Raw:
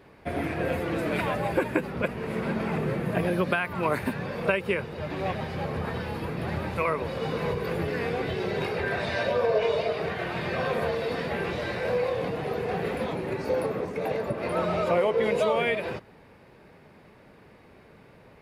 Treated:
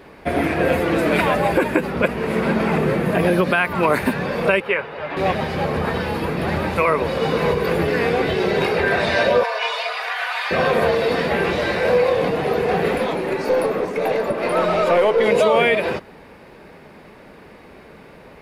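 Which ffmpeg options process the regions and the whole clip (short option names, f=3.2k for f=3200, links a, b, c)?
-filter_complex "[0:a]asettb=1/sr,asplit=3[a][b][c];[a]atrim=end=4.604[d];[b]atrim=start=4.6:end=5.17,asetpts=PTS-STARTPTS,afade=t=in:d=0.004:c=qsin,afade=t=out:st=0.566:d=0.004:c=qsin,acrossover=split=510 3200:gain=0.224 1 0.141[e][f][g];[e][f][g]amix=inputs=3:normalize=0,bandreject=f=7.5k:w=11,aecho=1:1:7.2:0.31,atrim=end_sample=25137[h];[c]atrim=start=5.166[i];[d][h]acrossfade=d=0.004:c1=hsin:c2=qsin[j];[j][i]acrossfade=d=0.004:c1=qsin:c2=hsin,asettb=1/sr,asplit=3[k][l][m];[k]atrim=end=9.434[n];[l]atrim=start=9.43:end=10.51,asetpts=PTS-STARTPTS,afade=t=in:d=0.004:c=qsin,afade=t=out:st=1.076:d=0.004:c=qsin,highpass=f=860:w=0.5412,highpass=f=860:w=1.3066,aecho=1:1:4.1:0.53,atrim=end_sample=47628[o];[m]atrim=start=10.506[p];[n][o]acrossfade=d=0.004:c1=hsin:c2=qsin[q];[q][p]acrossfade=d=0.004:c1=qsin:c2=hsin,asettb=1/sr,asplit=3[r][s][t];[r]atrim=end=12.984[u];[s]atrim=start=12.98:end=15.28,asetpts=PTS-STARTPTS,afade=t=in:d=0.004:c=qsin,afade=t=out:st=2.296:d=0.004:c=qsin,lowshelf=f=130:g=-10.5,aeval=exprs='(tanh(8.91*val(0)+0.15)-tanh(0.15))/8.91':c=same[v];[t]atrim=start=15.276[w];[u][v]acrossfade=d=0.004:c1=hsin:c2=qsin[x];[x][w]acrossfade=d=0.004:c1=qsin:c2=hsin,equalizer=f=110:w=1.9:g=-8.5,alimiter=level_in=16dB:limit=-1dB:release=50:level=0:latency=1,volume=-5.5dB"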